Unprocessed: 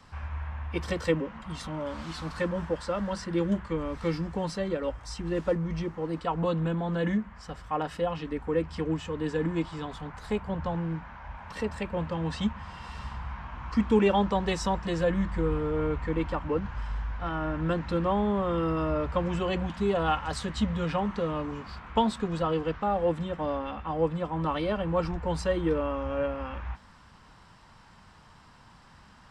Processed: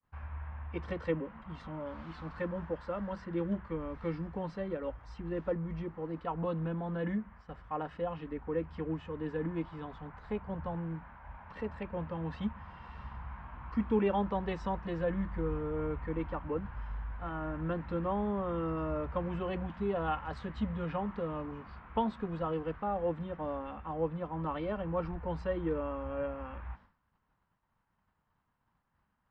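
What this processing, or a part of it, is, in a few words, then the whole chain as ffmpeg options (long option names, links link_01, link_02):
hearing-loss simulation: -af "lowpass=2200,agate=range=-33dB:threshold=-43dB:ratio=3:detection=peak,volume=-6.5dB"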